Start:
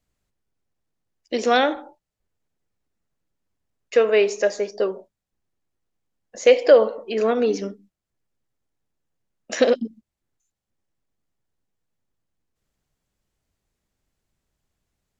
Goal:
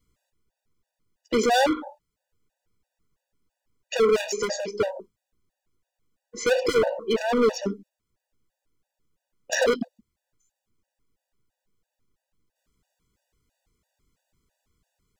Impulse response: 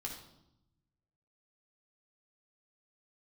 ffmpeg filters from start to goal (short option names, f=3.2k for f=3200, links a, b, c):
-af "volume=22dB,asoftclip=hard,volume=-22dB,afftfilt=real='re*gt(sin(2*PI*3*pts/sr)*(1-2*mod(floor(b*sr/1024/490),2)),0)':imag='im*gt(sin(2*PI*3*pts/sr)*(1-2*mod(floor(b*sr/1024/490),2)),0)':win_size=1024:overlap=0.75,volume=6.5dB"